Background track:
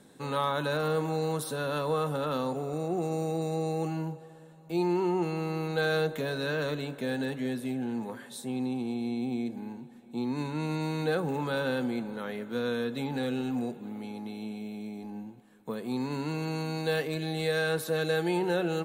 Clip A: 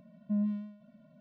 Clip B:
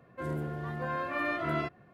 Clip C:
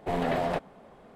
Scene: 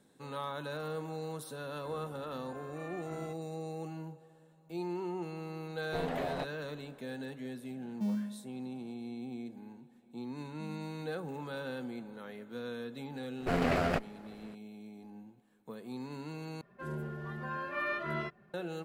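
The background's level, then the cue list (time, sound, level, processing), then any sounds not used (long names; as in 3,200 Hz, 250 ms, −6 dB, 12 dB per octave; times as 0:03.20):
background track −10 dB
0:01.65: mix in B −16.5 dB
0:05.86: mix in C −8.5 dB
0:07.71: mix in A −3.5 dB + gap after every zero crossing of 0.13 ms
0:10.30: mix in A −18 dB + log-companded quantiser 8 bits
0:13.40: mix in C −0.5 dB + lower of the sound and its delayed copy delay 0.4 ms
0:16.61: overwrite with B −6.5 dB + comb filter 5 ms, depth 81%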